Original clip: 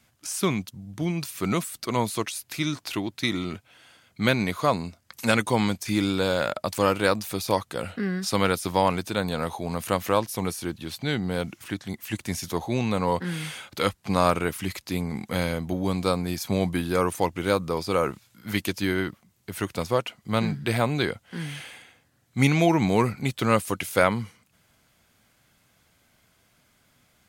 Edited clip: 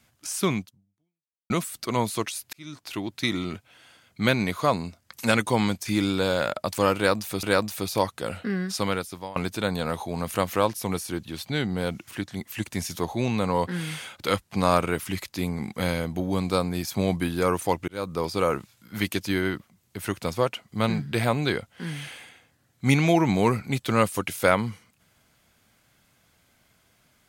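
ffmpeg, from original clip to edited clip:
-filter_complex "[0:a]asplit=6[s0][s1][s2][s3][s4][s5];[s0]atrim=end=1.5,asetpts=PTS-STARTPTS,afade=t=out:st=0.58:d=0.92:c=exp[s6];[s1]atrim=start=1.5:end=2.53,asetpts=PTS-STARTPTS,afade=t=in:d=0.004:c=hsin,afade=t=out:st=1.026:d=0.004:c=hsin[s7];[s2]atrim=start=2.53:end=7.432,asetpts=PTS-STARTPTS,afade=t=in:d=0.62[s8];[s3]atrim=start=6.958:end=8.89,asetpts=PTS-STARTPTS,afade=t=out:st=1.192:d=0.74:silence=0.0668344[s9];[s4]atrim=start=8.89:end=17.41,asetpts=PTS-STARTPTS,afade=t=in:d=0.004:c=hsin:silence=0.0668344,afade=t=out:st=8.516:d=0.004:c=hsin[s10];[s5]atrim=start=17.41,asetpts=PTS-STARTPTS,afade=t=in:d=0.32[s11];[s6][s7][s8]concat=n=3:v=0:a=1[s12];[s9][s10][s11]concat=n=3:v=0:a=1[s13];[s12][s13]acrossfade=d=0.004:c1=hsin:c2=hsin"

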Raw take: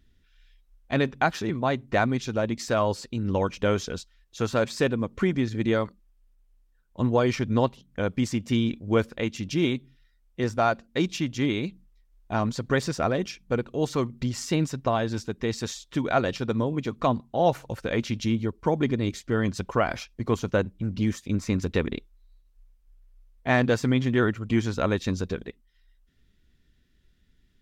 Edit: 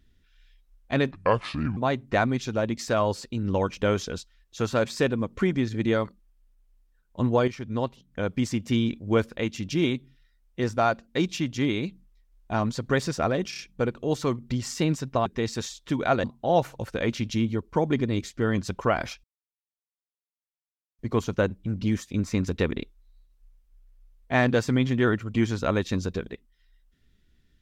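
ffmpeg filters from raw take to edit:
-filter_complex "[0:a]asplit=10[s0][s1][s2][s3][s4][s5][s6][s7][s8][s9];[s0]atrim=end=1.114[s10];[s1]atrim=start=1.11:end=1.57,asetpts=PTS-STARTPTS,asetrate=30870,aresample=44100,atrim=end_sample=28980,asetpts=PTS-STARTPTS[s11];[s2]atrim=start=1.566:end=7.28,asetpts=PTS-STARTPTS,afade=t=out:st=5.71:d=0.004:c=hsin:silence=0.251189[s12];[s3]atrim=start=7.28:end=13.332,asetpts=PTS-STARTPTS,afade=t=in:d=1.24:c=qsin:silence=0.251189[s13];[s4]atrim=start=13.298:end=13.332[s14];[s5]atrim=start=13.298:end=13.332[s15];[s6]atrim=start=13.298:end=14.972[s16];[s7]atrim=start=15.308:end=16.292[s17];[s8]atrim=start=17.138:end=20.14,asetpts=PTS-STARTPTS,afade=t=out:st=2.998:d=0.004:c=hsin,apad=pad_dur=1.75[s18];[s9]atrim=start=20.14,asetpts=PTS-STARTPTS,afade=t=in:d=0.004:c=hsin[s19];[s10][s11]acrossfade=d=0.004:c1=hsin:c2=hsin[s20];[s12][s13]concat=n=2:v=0:a=1[s21];[s20][s21]acrossfade=d=0.004:c1=hsin:c2=hsin[s22];[s22][s14]acrossfade=d=0.004:c1=hsin:c2=hsin[s23];[s23][s15]acrossfade=d=0.004:c1=hsin:c2=hsin[s24];[s24][s16]acrossfade=d=0.004:c1=hsin:c2=hsin[s25];[s25][s17]acrossfade=d=0.004:c1=hsin:c2=hsin[s26];[s18][s19]concat=n=2:v=0:a=1[s27];[s26][s27]acrossfade=d=0.004:c1=hsin:c2=hsin"

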